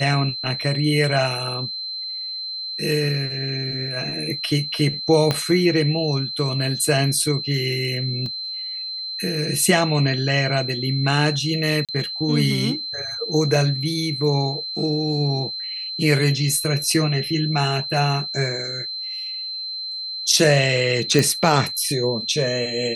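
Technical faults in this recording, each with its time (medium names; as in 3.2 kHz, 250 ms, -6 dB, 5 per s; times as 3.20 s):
whine 4.1 kHz -27 dBFS
5.31 s: pop -6 dBFS
8.26 s: dropout 2.2 ms
11.85–11.89 s: dropout 37 ms
21.19 s: pop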